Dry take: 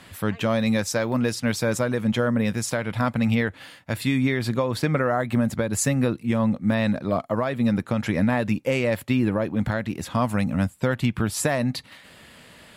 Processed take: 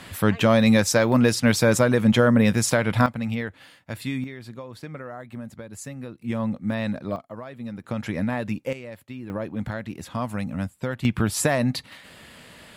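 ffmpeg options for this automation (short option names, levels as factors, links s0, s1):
-af "asetnsamples=n=441:p=0,asendcmd='3.06 volume volume -6dB;4.24 volume volume -14.5dB;6.22 volume volume -4.5dB;7.16 volume volume -13dB;7.84 volume volume -4.5dB;8.73 volume volume -15.5dB;9.3 volume volume -5.5dB;11.05 volume volume 1.5dB',volume=1.78"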